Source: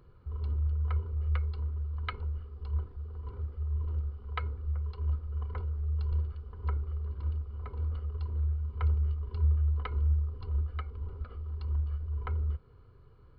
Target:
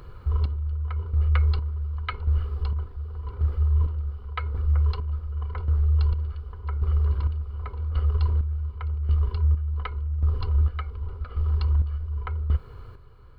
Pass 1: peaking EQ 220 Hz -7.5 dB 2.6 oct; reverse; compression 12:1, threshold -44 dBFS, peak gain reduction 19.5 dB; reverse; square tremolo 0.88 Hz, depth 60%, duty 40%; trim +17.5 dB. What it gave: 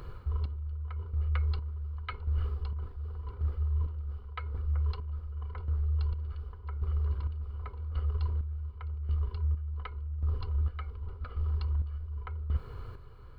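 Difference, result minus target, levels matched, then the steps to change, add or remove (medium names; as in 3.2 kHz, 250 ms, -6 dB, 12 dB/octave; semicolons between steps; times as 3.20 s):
compression: peak gain reduction +8.5 dB
change: compression 12:1, threshold -34.5 dBFS, peak gain reduction 11 dB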